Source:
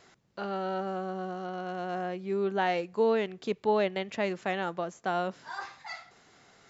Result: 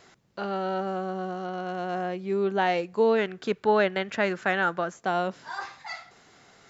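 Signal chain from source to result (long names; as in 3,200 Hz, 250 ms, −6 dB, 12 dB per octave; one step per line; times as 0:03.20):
0:03.18–0:04.96: parametric band 1,500 Hz +11 dB 0.52 octaves
level +3.5 dB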